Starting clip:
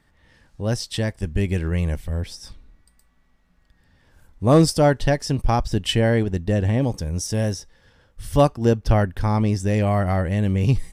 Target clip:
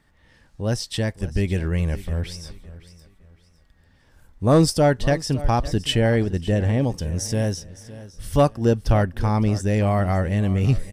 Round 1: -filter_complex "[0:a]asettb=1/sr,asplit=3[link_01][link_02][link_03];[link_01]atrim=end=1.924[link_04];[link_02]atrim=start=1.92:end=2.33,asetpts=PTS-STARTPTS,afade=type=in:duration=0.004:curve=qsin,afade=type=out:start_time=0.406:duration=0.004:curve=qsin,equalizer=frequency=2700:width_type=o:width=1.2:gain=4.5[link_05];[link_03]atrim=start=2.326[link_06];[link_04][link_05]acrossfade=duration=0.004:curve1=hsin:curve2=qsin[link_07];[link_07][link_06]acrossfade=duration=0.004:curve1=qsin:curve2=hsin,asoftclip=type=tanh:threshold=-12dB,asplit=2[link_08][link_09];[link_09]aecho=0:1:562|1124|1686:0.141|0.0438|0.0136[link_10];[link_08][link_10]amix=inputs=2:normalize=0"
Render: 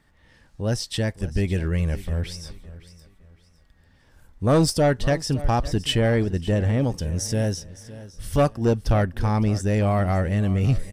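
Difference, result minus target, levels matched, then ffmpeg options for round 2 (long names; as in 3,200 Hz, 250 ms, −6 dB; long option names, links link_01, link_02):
soft clipping: distortion +10 dB
-filter_complex "[0:a]asettb=1/sr,asplit=3[link_01][link_02][link_03];[link_01]atrim=end=1.924[link_04];[link_02]atrim=start=1.92:end=2.33,asetpts=PTS-STARTPTS,afade=type=in:duration=0.004:curve=qsin,afade=type=out:start_time=0.406:duration=0.004:curve=qsin,equalizer=frequency=2700:width_type=o:width=1.2:gain=4.5[link_05];[link_03]atrim=start=2.326[link_06];[link_04][link_05]acrossfade=duration=0.004:curve1=hsin:curve2=qsin[link_07];[link_07][link_06]acrossfade=duration=0.004:curve1=qsin:curve2=hsin,asoftclip=type=tanh:threshold=-5dB,asplit=2[link_08][link_09];[link_09]aecho=0:1:562|1124|1686:0.141|0.0438|0.0136[link_10];[link_08][link_10]amix=inputs=2:normalize=0"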